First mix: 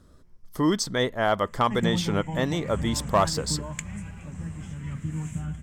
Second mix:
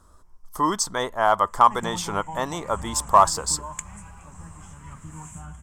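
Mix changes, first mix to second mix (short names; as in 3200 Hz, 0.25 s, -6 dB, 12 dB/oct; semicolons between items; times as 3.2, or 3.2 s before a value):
speech +3.0 dB; master: add graphic EQ 125/250/500/1000/2000/4000/8000 Hz -11/-7/-6/+11/-7/-6/+6 dB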